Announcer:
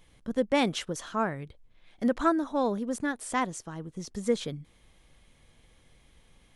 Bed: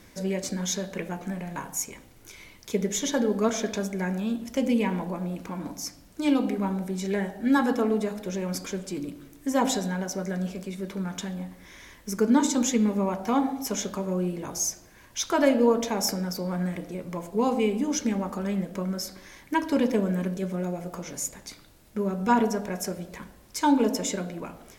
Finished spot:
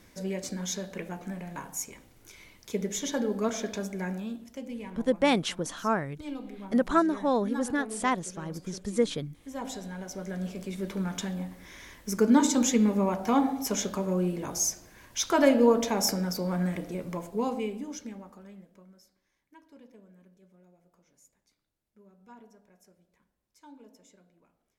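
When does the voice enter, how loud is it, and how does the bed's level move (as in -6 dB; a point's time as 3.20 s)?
4.70 s, +1.5 dB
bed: 4.11 s -4.5 dB
4.66 s -15 dB
9.45 s -15 dB
10.80 s 0 dB
17.06 s 0 dB
19.21 s -30 dB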